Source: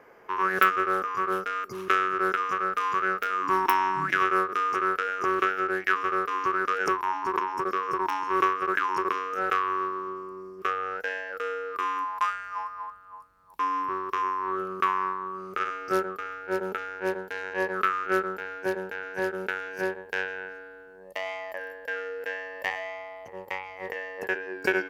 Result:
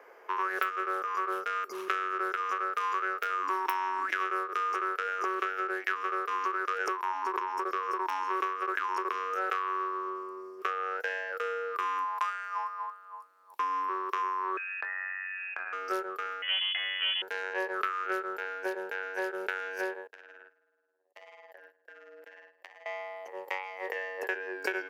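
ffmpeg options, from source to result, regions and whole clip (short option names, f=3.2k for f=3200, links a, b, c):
-filter_complex "[0:a]asettb=1/sr,asplit=3[a][b][c];[a]atrim=end=14.574[d];[b]atrim=start=14.57:end=15.73,asetpts=PTS-STARTPTS,afade=t=in:d=0.004:c=qsin,afade=t=out:st=1.156:d=0.004:c=qsin,lowpass=f=2.5k:t=q:w=0.5098,lowpass=f=2.5k:t=q:w=0.6013,lowpass=f=2.5k:t=q:w=0.9,lowpass=f=2.5k:t=q:w=2.563,afreqshift=-2900,acompressor=threshold=-34dB:ratio=4:attack=3.2:release=140:knee=1:detection=peak,asplit=2[e][f];[f]adelay=23,volume=-11dB[g];[e][g]amix=inputs=2:normalize=0,atrim=end_sample=51156[h];[c]atrim=start=15.726[i];[d][h]acrossfade=d=0.004:c1=hsin:c2=qsin[j];[j][i]acrossfade=d=0.004:c1=qsin:c2=hsin,asettb=1/sr,asplit=3[k][l][m];[k]atrim=end=16.424[n];[l]atrim=start=16.42:end=17.22,asetpts=PTS-STARTPTS,afade=t=in:d=0.004:c=qsin,afade=t=out:st=0.796:d=0.004:c=qsin,equalizer=f=560:w=0.37:g=12,aeval=exprs='(tanh(12.6*val(0)+0.65)-tanh(0.65))/12.6':c=same,lowpass=f=2.9k:t=q:w=0.5098,lowpass=f=2.9k:t=q:w=0.6013,lowpass=f=2.9k:t=q:w=0.9,lowpass=f=2.9k:t=q:w=2.563,afreqshift=-3400[o];[m]atrim=start=17.216[p];[n][o]acrossfade=d=0.004:c1=hsin:c2=qsin[q];[q][p]acrossfade=d=0.004:c1=qsin:c2=hsin,asettb=1/sr,asplit=3[r][s][t];[r]atrim=end=20.074[u];[s]atrim=start=20.07:end=22.86,asetpts=PTS-STARTPTS,afade=t=in:d=0.004:c=qsin,afade=t=out:st=2.786:d=0.004:c=qsin,agate=range=-25dB:threshold=-37dB:ratio=16:release=100:detection=peak,acompressor=threshold=-43dB:ratio=20:attack=3.2:release=140:knee=1:detection=peak,tremolo=f=170:d=0.824[v];[t]atrim=start=22.856[w];[u][v]acrossfade=d=0.004:c1=hsin:c2=qsin[x];[x][w]acrossfade=d=0.004:c1=qsin:c2=hsin,acompressor=threshold=-28dB:ratio=4,highpass=f=370:w=0.5412,highpass=f=370:w=1.3066"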